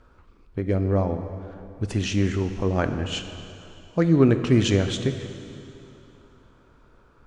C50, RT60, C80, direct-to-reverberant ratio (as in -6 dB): 9.0 dB, 2.9 s, 9.5 dB, 8.0 dB